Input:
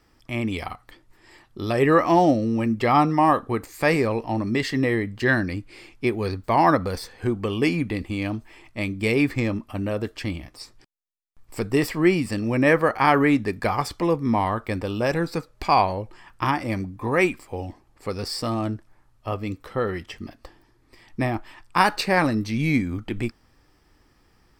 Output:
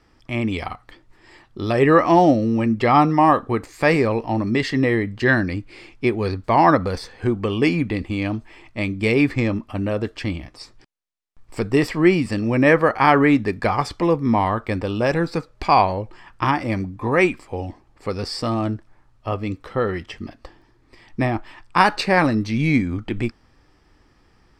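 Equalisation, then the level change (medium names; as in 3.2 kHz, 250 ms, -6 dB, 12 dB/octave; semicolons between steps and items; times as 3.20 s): distance through air 55 m; +3.5 dB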